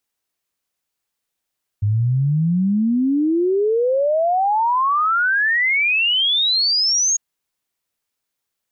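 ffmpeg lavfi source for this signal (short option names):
-f lavfi -i "aevalsrc='0.188*clip(min(t,5.35-t)/0.01,0,1)*sin(2*PI*100*5.35/log(6700/100)*(exp(log(6700/100)*t/5.35)-1))':d=5.35:s=44100"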